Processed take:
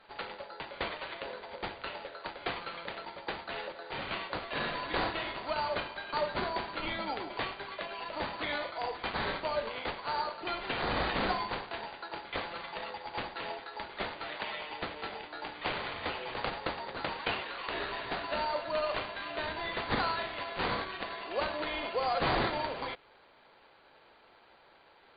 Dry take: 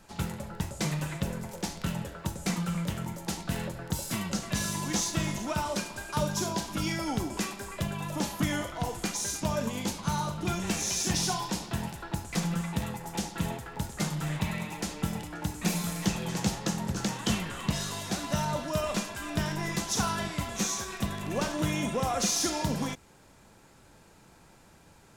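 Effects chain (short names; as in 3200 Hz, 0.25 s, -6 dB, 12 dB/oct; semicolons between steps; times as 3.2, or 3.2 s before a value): HPF 420 Hz 24 dB/oct; careless resampling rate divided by 8×, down none, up hold; brick-wall FIR low-pass 4800 Hz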